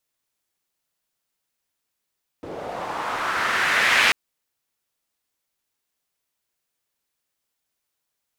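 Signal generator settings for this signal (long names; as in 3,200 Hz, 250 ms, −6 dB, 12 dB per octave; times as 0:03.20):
filter sweep on noise pink, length 1.69 s bandpass, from 370 Hz, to 2,200 Hz, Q 2, linear, gain ramp +18 dB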